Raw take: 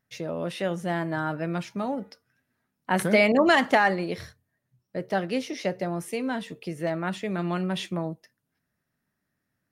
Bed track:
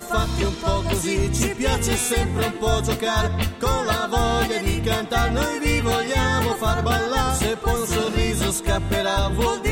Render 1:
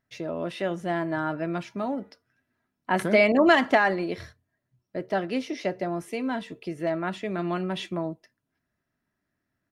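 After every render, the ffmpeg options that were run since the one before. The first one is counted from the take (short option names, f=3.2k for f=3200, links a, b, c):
-af "lowpass=f=4k:p=1,aecho=1:1:3:0.32"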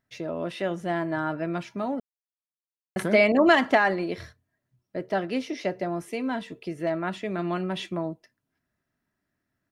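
-filter_complex "[0:a]asplit=3[a][b][c];[a]atrim=end=2,asetpts=PTS-STARTPTS,afade=t=out:st=1.996:d=0.004:c=hsin[d];[b]atrim=start=2:end=2.96,asetpts=PTS-STARTPTS,volume=0[e];[c]atrim=start=2.96,asetpts=PTS-STARTPTS,afade=t=in:d=0.004:c=hsin[f];[d][e][f]concat=n=3:v=0:a=1"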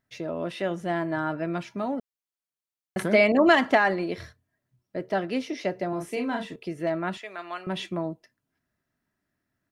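-filter_complex "[0:a]asettb=1/sr,asplit=3[a][b][c];[a]atrim=end=5.894[d];[b]atrim=start=5.89:end=6.56,asetpts=PTS-STARTPTS,afade=t=in:d=0.004:c=qsin,afade=t=out:st=0.666:d=0.004:c=qsin,asplit=2[e][f];[f]adelay=37,volume=-4dB[g];[e][g]amix=inputs=2:normalize=0,atrim=end_sample=29547[h];[c]atrim=start=6.556[i];[d][h]acrossfade=d=0.004:c1=hsin:c2=qsin[j];[j][i]acrossfade=d=0.004:c1=qsin:c2=hsin,asettb=1/sr,asplit=3[k][l][m];[k]atrim=end=7.174[n];[l]atrim=start=7.17:end=7.67,asetpts=PTS-STARTPTS,afade=t=in:d=0.004:c=qsin,afade=t=out:st=0.496:d=0.004:c=qsin,highpass=830[o];[m]atrim=start=7.666[p];[n][o]acrossfade=d=0.004:c1=hsin:c2=qsin[q];[q][p]acrossfade=d=0.004:c1=qsin:c2=hsin"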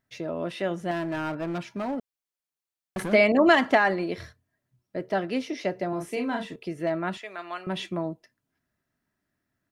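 -filter_complex "[0:a]asettb=1/sr,asplit=3[a][b][c];[a]atrim=end=0.914[d];[b]atrim=start=0.91:end=3.13,asetpts=PTS-STARTPTS,afade=t=in:d=0.004:c=qsin,afade=t=out:st=2.216:d=0.004:c=qsin,asoftclip=type=hard:threshold=-26dB[e];[c]atrim=start=3.126[f];[d][e]acrossfade=d=0.004:c1=hsin:c2=qsin[g];[g][f]acrossfade=d=0.004:c1=qsin:c2=hsin"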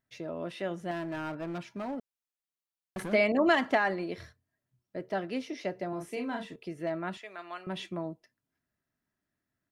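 -af "volume=-6dB"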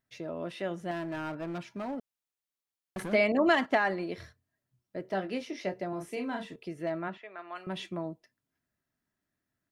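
-filter_complex "[0:a]asettb=1/sr,asplit=3[a][b][c];[a]atrim=end=3.144[d];[b]atrim=start=3.14:end=3.72,asetpts=PTS-STARTPTS,afade=t=in:d=0.004:c=qsin,afade=t=out:st=0.576:d=0.004:c=qsin,agate=range=-10dB:threshold=-37dB:ratio=16:release=100:detection=peak[e];[c]atrim=start=3.716[f];[d][e]acrossfade=d=0.004:c1=hsin:c2=qsin[g];[g][f]acrossfade=d=0.004:c1=qsin:c2=hsin,asettb=1/sr,asplit=3[h][i][j];[h]atrim=end=5.034[k];[i]atrim=start=5.03:end=5.74,asetpts=PTS-STARTPTS,afade=t=in:d=0.004:c=qsin,afade=t=out:st=0.706:d=0.004:c=qsin,asplit=2[l][m];[m]adelay=21,volume=-8dB[n];[l][n]amix=inputs=2:normalize=0,atrim=end_sample=31311[o];[j]atrim=start=5.736[p];[k][o]acrossfade=d=0.004:c1=hsin:c2=qsin[q];[q][p]acrossfade=d=0.004:c1=qsin:c2=hsin,asplit=3[r][s][t];[r]afade=t=out:st=7.07:d=0.02[u];[s]highpass=190,lowpass=2.3k,afade=t=in:st=7.07:d=0.02,afade=t=out:st=7.54:d=0.02[v];[t]afade=t=in:st=7.54:d=0.02[w];[u][v][w]amix=inputs=3:normalize=0"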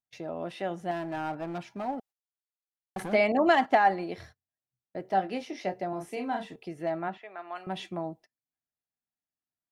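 -af "agate=range=-18dB:threshold=-53dB:ratio=16:detection=peak,equalizer=f=780:w=5.6:g=12.5"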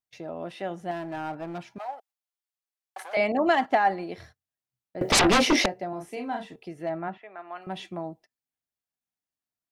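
-filter_complex "[0:a]asettb=1/sr,asplit=3[a][b][c];[a]atrim=end=1.784[d];[b]atrim=start=1.78:end=3.17,asetpts=PTS-STARTPTS,afade=t=in:d=0.004:c=qsin,afade=t=out:st=1.386:d=0.004:c=qsin,highpass=f=630:w=0.5412,highpass=f=630:w=1.3066[e];[c]atrim=start=3.166[f];[d][e]acrossfade=d=0.004:c1=hsin:c2=qsin[g];[g][f]acrossfade=d=0.004:c1=qsin:c2=hsin,asettb=1/sr,asplit=3[h][i][j];[h]atrim=end=5.014[k];[i]atrim=start=5.01:end=5.66,asetpts=PTS-STARTPTS,afade=t=in:d=0.004:c=qsin,afade=t=out:st=0.646:d=0.004:c=qsin,aeval=exprs='0.168*sin(PI/2*8.91*val(0)/0.168)':c=same[l];[j]atrim=start=5.656[m];[k][l]acrossfade=d=0.004:c1=hsin:c2=qsin[n];[n][m]acrossfade=d=0.004:c1=qsin:c2=hsin,asettb=1/sr,asplit=3[o][p][q];[o]atrim=end=6.894[r];[p]atrim=start=6.89:end=7.62,asetpts=PTS-STARTPTS,afade=t=in:d=0.004:c=qsin,afade=t=out:st=0.726:d=0.004:c=qsin,bass=f=250:g=3,treble=f=4k:g=-12[s];[q]atrim=start=7.616[t];[r][s]acrossfade=d=0.004:c1=hsin:c2=qsin[u];[u][t]acrossfade=d=0.004:c1=qsin:c2=hsin"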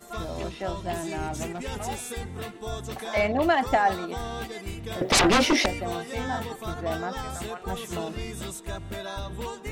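-filter_complex "[1:a]volume=-13.5dB[a];[0:a][a]amix=inputs=2:normalize=0"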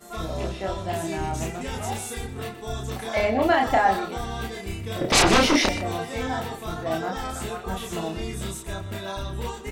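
-filter_complex "[0:a]asplit=2[a][b];[b]adelay=31,volume=-2dB[c];[a][c]amix=inputs=2:normalize=0,aecho=1:1:123:0.211"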